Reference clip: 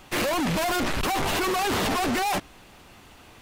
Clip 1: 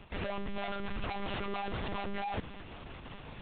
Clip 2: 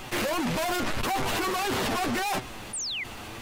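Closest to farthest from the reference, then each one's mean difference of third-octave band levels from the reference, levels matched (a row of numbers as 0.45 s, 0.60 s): 2, 1; 4.0 dB, 13.5 dB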